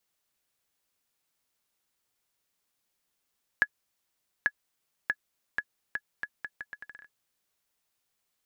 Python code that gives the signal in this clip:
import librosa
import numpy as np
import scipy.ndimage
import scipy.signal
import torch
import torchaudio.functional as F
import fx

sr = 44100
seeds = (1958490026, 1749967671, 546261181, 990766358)

y = fx.bouncing_ball(sr, first_gap_s=0.84, ratio=0.76, hz=1690.0, decay_ms=54.0, level_db=-10.5)